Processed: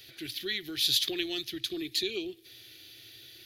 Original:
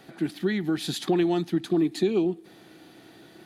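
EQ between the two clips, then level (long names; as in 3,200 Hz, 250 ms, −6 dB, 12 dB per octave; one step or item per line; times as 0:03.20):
drawn EQ curve 120 Hz 0 dB, 170 Hz −26 dB, 380 Hz −11 dB, 550 Hz −13 dB, 880 Hz −24 dB, 2,300 Hz +3 dB, 3,400 Hz +9 dB, 5,800 Hz +8 dB, 8,300 Hz −3 dB, 13,000 Hz +13 dB
0.0 dB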